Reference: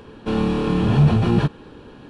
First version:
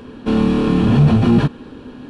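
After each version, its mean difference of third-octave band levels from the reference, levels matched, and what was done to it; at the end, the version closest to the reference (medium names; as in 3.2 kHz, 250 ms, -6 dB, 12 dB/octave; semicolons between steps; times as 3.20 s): 1.5 dB: peaking EQ 250 Hz +11 dB 0.26 oct; band-stop 850 Hz, Q 26; in parallel at -6.5 dB: hard clipper -15.5 dBFS, distortion -9 dB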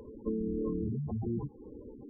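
12.5 dB: compression, threshold -24 dBFS, peak gain reduction 13 dB; graphic EQ with 31 bands 100 Hz -4 dB, 160 Hz -12 dB, 1.6 kHz -5 dB, 2.5 kHz -3 dB; spectral gate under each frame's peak -10 dB strong; trim -3.5 dB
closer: first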